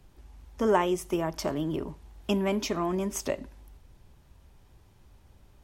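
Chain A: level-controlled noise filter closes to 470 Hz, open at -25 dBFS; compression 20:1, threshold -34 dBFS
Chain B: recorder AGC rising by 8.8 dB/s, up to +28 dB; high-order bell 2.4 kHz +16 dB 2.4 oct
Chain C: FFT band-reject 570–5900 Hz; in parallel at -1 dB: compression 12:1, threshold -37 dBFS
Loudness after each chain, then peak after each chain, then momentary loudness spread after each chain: -40.0 LUFS, -23.0 LUFS, -29.5 LUFS; -24.0 dBFS, -2.5 dBFS, -14.5 dBFS; 21 LU, 20 LU, 13 LU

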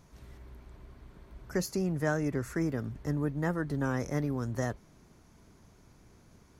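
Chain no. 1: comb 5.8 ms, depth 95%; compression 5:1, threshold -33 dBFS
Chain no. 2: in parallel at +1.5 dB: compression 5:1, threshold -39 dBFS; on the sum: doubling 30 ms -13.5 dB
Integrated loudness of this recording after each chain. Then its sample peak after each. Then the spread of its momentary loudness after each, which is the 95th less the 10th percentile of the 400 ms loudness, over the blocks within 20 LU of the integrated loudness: -37.5 LUFS, -30.0 LUFS; -23.0 dBFS, -14.5 dBFS; 21 LU, 18 LU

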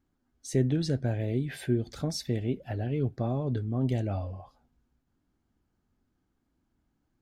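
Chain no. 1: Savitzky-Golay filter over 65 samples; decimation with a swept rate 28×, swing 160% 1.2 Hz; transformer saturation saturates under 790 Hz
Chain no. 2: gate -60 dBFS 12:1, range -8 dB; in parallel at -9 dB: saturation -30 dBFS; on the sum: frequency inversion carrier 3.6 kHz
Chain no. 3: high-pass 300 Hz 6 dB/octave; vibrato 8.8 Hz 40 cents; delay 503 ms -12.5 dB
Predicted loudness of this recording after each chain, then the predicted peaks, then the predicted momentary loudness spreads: -34.5 LUFS, -24.5 LUFS, -35.0 LUFS; -14.0 dBFS, -12.0 dBFS, -17.5 dBFS; 6 LU, 6 LU, 13 LU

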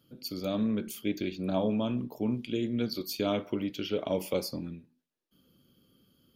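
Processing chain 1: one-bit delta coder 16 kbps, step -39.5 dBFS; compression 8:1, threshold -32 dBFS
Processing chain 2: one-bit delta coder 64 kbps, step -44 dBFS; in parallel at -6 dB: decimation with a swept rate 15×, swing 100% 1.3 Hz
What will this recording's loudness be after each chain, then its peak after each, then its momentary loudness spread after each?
-39.0 LUFS, -29.0 LUFS; -22.0 dBFS, -12.5 dBFS; 10 LU, 21 LU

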